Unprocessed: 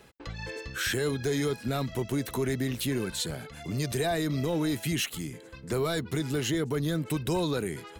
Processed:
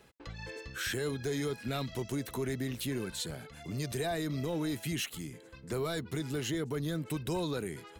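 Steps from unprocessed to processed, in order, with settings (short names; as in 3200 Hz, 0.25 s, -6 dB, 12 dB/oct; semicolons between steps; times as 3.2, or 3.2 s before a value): 1.56–2.14 bell 1800 Hz -> 6900 Hz +6.5 dB 1.1 oct; gain -5.5 dB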